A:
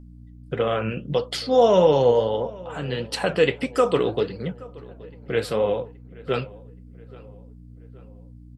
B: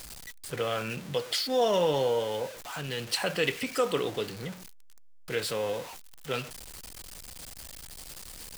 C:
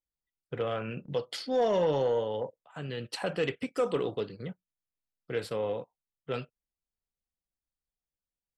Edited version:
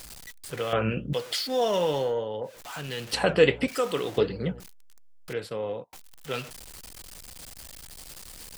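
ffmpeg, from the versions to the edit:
-filter_complex "[0:a]asplit=3[s0][s1][s2];[2:a]asplit=2[s3][s4];[1:a]asplit=6[s5][s6][s7][s8][s9][s10];[s5]atrim=end=0.732[s11];[s0]atrim=start=0.728:end=1.132[s12];[s6]atrim=start=1.128:end=2.15[s13];[s3]atrim=start=1.91:end=2.66[s14];[s7]atrim=start=2.42:end=3.132[s15];[s1]atrim=start=3.128:end=3.682[s16];[s8]atrim=start=3.678:end=4.182[s17];[s2]atrim=start=4.178:end=4.602[s18];[s9]atrim=start=4.598:end=5.332[s19];[s4]atrim=start=5.328:end=5.932[s20];[s10]atrim=start=5.928[s21];[s11][s12]acrossfade=d=0.004:c1=hsin:c2=hsin[s22];[s22][s13]acrossfade=d=0.004:c1=hsin:c2=hsin[s23];[s23][s14]acrossfade=d=0.24:c1=tri:c2=tri[s24];[s24][s15]acrossfade=d=0.24:c1=tri:c2=tri[s25];[s25][s16]acrossfade=d=0.004:c1=hsin:c2=hsin[s26];[s26][s17]acrossfade=d=0.004:c1=hsin:c2=hsin[s27];[s27][s18]acrossfade=d=0.004:c1=hsin:c2=hsin[s28];[s28][s19]acrossfade=d=0.004:c1=hsin:c2=hsin[s29];[s29][s20]acrossfade=d=0.004:c1=hsin:c2=hsin[s30];[s30][s21]acrossfade=d=0.004:c1=hsin:c2=hsin"

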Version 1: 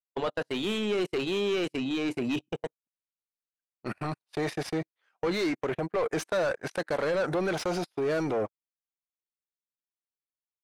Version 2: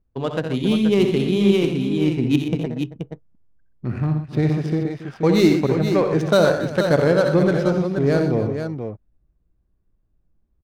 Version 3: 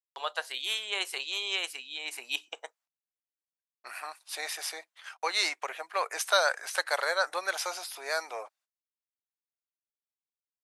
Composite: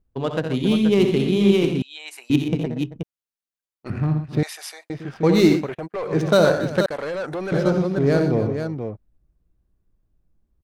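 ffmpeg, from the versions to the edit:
-filter_complex "[2:a]asplit=2[s0][s1];[0:a]asplit=3[s2][s3][s4];[1:a]asplit=6[s5][s6][s7][s8][s9][s10];[s5]atrim=end=1.822[s11];[s0]atrim=start=1.818:end=2.302[s12];[s6]atrim=start=2.298:end=3.032[s13];[s2]atrim=start=3.028:end=3.902[s14];[s7]atrim=start=3.898:end=4.432[s15];[s1]atrim=start=4.428:end=4.902[s16];[s8]atrim=start=4.898:end=5.7[s17];[s3]atrim=start=5.54:end=6.18[s18];[s9]atrim=start=6.02:end=6.862[s19];[s4]atrim=start=6.858:end=7.522[s20];[s10]atrim=start=7.518[s21];[s11][s12]acrossfade=d=0.004:c1=hsin:c2=hsin[s22];[s22][s13]acrossfade=d=0.004:c1=hsin:c2=hsin[s23];[s23][s14]acrossfade=d=0.004:c1=hsin:c2=hsin[s24];[s24][s15]acrossfade=d=0.004:c1=hsin:c2=hsin[s25];[s25][s16]acrossfade=d=0.004:c1=hsin:c2=hsin[s26];[s26][s17]acrossfade=d=0.004:c1=hsin:c2=hsin[s27];[s27][s18]acrossfade=d=0.16:c1=tri:c2=tri[s28];[s28][s19]acrossfade=d=0.16:c1=tri:c2=tri[s29];[s29][s20]acrossfade=d=0.004:c1=hsin:c2=hsin[s30];[s30][s21]acrossfade=d=0.004:c1=hsin:c2=hsin"

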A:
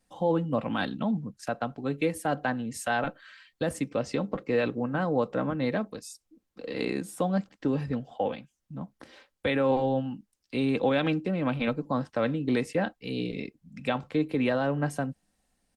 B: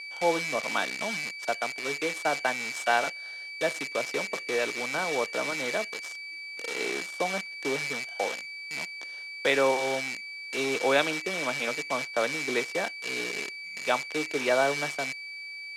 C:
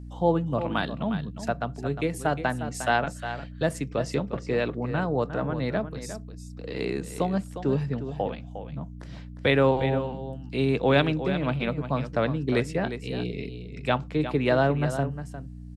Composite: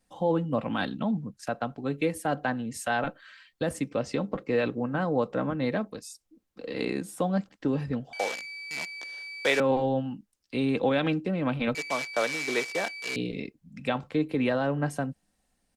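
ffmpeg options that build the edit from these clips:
-filter_complex "[1:a]asplit=2[s0][s1];[0:a]asplit=3[s2][s3][s4];[s2]atrim=end=8.132[s5];[s0]atrim=start=8.128:end=9.602[s6];[s3]atrim=start=9.598:end=11.752[s7];[s1]atrim=start=11.748:end=13.162[s8];[s4]atrim=start=13.158[s9];[s5][s6]acrossfade=d=0.004:c1=hsin:c2=hsin[s10];[s10][s7]acrossfade=d=0.004:c1=hsin:c2=hsin[s11];[s11][s8]acrossfade=d=0.004:c1=hsin:c2=hsin[s12];[s12][s9]acrossfade=d=0.004:c1=hsin:c2=hsin"

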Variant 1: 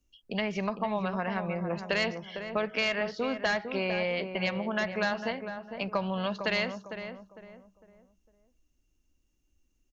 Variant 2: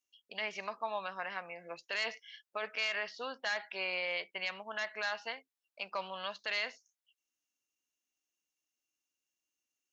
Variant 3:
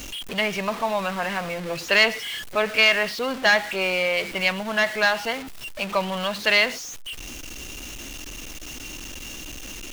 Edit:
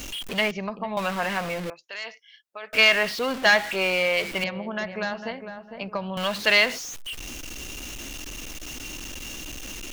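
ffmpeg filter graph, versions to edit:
-filter_complex "[0:a]asplit=2[s0][s1];[2:a]asplit=4[s2][s3][s4][s5];[s2]atrim=end=0.512[s6];[s0]atrim=start=0.508:end=0.972[s7];[s3]atrim=start=0.968:end=1.702[s8];[1:a]atrim=start=1.698:end=2.732[s9];[s4]atrim=start=2.728:end=4.442[s10];[s1]atrim=start=4.438:end=6.172[s11];[s5]atrim=start=6.168[s12];[s6][s7]acrossfade=d=0.004:c1=hsin:c2=hsin[s13];[s13][s8]acrossfade=d=0.004:c1=hsin:c2=hsin[s14];[s14][s9]acrossfade=d=0.004:c1=hsin:c2=hsin[s15];[s15][s10]acrossfade=d=0.004:c1=hsin:c2=hsin[s16];[s16][s11]acrossfade=d=0.004:c1=hsin:c2=hsin[s17];[s17][s12]acrossfade=d=0.004:c1=hsin:c2=hsin"

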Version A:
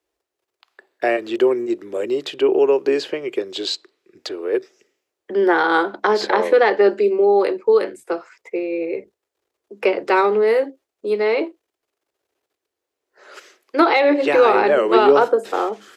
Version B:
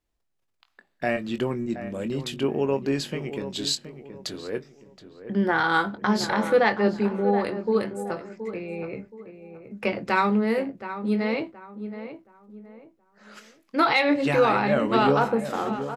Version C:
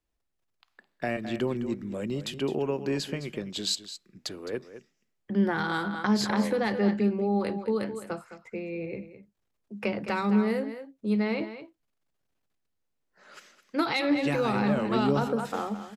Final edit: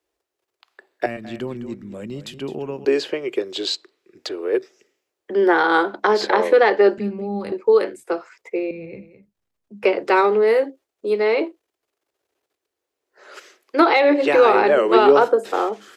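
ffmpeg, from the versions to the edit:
-filter_complex "[2:a]asplit=3[s0][s1][s2];[0:a]asplit=4[s3][s4][s5][s6];[s3]atrim=end=1.062[s7];[s0]atrim=start=1.058:end=2.852[s8];[s4]atrim=start=2.848:end=6.982[s9];[s1]atrim=start=6.978:end=7.522[s10];[s5]atrim=start=7.518:end=8.712[s11];[s2]atrim=start=8.708:end=9.842[s12];[s6]atrim=start=9.838[s13];[s7][s8]acrossfade=d=0.004:c1=hsin:c2=hsin[s14];[s14][s9]acrossfade=d=0.004:c1=hsin:c2=hsin[s15];[s15][s10]acrossfade=d=0.004:c1=hsin:c2=hsin[s16];[s16][s11]acrossfade=d=0.004:c1=hsin:c2=hsin[s17];[s17][s12]acrossfade=d=0.004:c1=hsin:c2=hsin[s18];[s18][s13]acrossfade=d=0.004:c1=hsin:c2=hsin"

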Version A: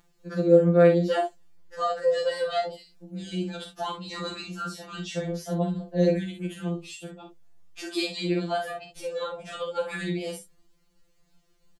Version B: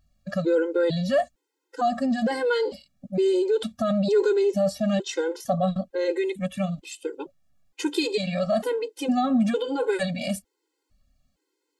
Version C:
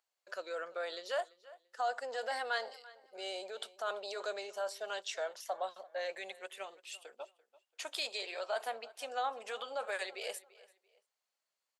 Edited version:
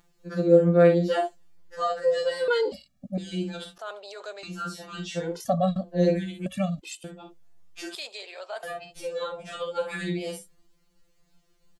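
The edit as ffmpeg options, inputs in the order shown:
-filter_complex "[1:a]asplit=3[s0][s1][s2];[2:a]asplit=2[s3][s4];[0:a]asplit=6[s5][s6][s7][s8][s9][s10];[s5]atrim=end=2.482[s11];[s0]atrim=start=2.478:end=3.182[s12];[s6]atrim=start=3.178:end=3.782[s13];[s3]atrim=start=3.778:end=4.432[s14];[s7]atrim=start=4.428:end=5.41[s15];[s1]atrim=start=5.17:end=5.97[s16];[s8]atrim=start=5.73:end=6.462[s17];[s2]atrim=start=6.458:end=7.042[s18];[s9]atrim=start=7.038:end=7.952[s19];[s4]atrim=start=7.948:end=8.632[s20];[s10]atrim=start=8.628[s21];[s11][s12]acrossfade=d=0.004:c1=hsin:c2=hsin[s22];[s22][s13]acrossfade=d=0.004:c1=hsin:c2=hsin[s23];[s23][s14]acrossfade=d=0.004:c1=hsin:c2=hsin[s24];[s24][s15]acrossfade=d=0.004:c1=hsin:c2=hsin[s25];[s25][s16]acrossfade=d=0.24:c1=tri:c2=tri[s26];[s26][s17]acrossfade=d=0.24:c1=tri:c2=tri[s27];[s27][s18]acrossfade=d=0.004:c1=hsin:c2=hsin[s28];[s28][s19]acrossfade=d=0.004:c1=hsin:c2=hsin[s29];[s29][s20]acrossfade=d=0.004:c1=hsin:c2=hsin[s30];[s30][s21]acrossfade=d=0.004:c1=hsin:c2=hsin"

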